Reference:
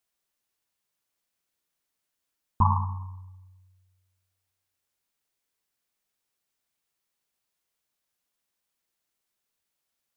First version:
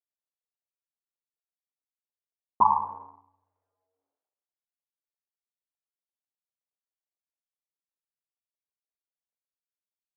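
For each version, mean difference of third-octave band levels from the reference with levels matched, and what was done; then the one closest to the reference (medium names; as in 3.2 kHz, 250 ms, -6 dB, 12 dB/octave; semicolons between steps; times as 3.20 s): 4.0 dB: companding laws mixed up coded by A; Butterworth band-pass 610 Hz, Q 1.1; trim +9 dB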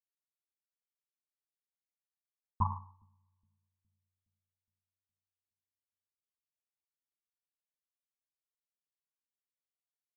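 2.5 dB: two-band feedback delay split 350 Hz, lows 415 ms, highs 126 ms, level -12.5 dB; upward expansion 2.5:1, over -35 dBFS; trim -7.5 dB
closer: second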